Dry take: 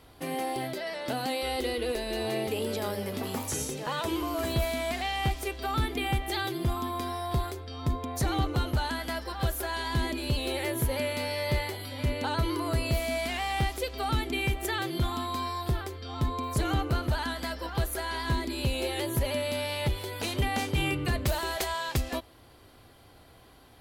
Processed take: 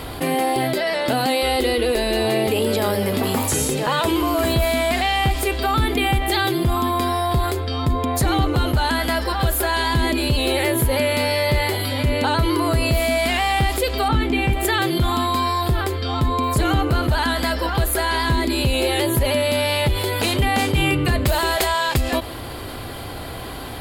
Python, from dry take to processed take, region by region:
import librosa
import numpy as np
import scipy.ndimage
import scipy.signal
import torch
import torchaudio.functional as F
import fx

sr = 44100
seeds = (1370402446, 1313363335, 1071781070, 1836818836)

y = fx.chain(x, sr, fx.lowpass(hz=2400.0, slope=6),
    fx.doubler(ms=19.0, db=-5), at=(14.08, 14.53))
y = fx.peak_eq(y, sr, hz=5900.0, db=-9.0, octaves=0.22)
y = fx.env_flatten(y, sr, amount_pct=50)
y = y * 10.0 ** (7.5 / 20.0)